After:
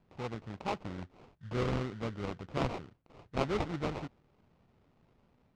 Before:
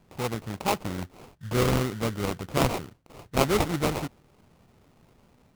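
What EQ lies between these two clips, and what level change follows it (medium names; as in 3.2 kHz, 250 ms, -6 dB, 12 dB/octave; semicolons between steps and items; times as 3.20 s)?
distance through air 140 m; -8.5 dB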